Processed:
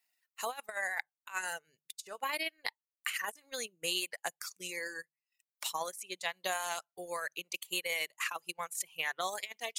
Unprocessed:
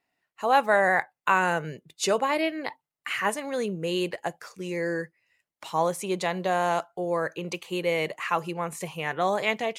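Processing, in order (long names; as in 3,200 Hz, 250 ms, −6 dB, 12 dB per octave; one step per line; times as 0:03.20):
first-order pre-emphasis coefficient 0.97
mains-hum notches 50/100/150 Hz
transient designer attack +5 dB, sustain −12 dB
reverb reduction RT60 0.87 s
compressor whose output falls as the input rises −40 dBFS, ratio −0.5
level +4.5 dB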